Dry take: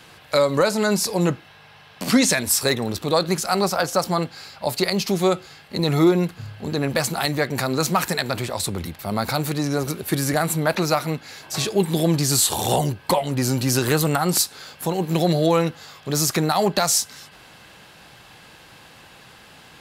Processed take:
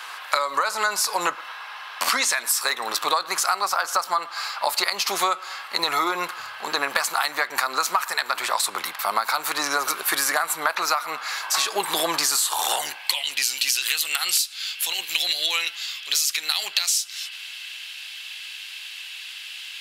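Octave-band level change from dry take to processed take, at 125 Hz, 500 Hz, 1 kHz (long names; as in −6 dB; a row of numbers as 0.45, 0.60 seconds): −31.0, −11.0, +1.5 decibels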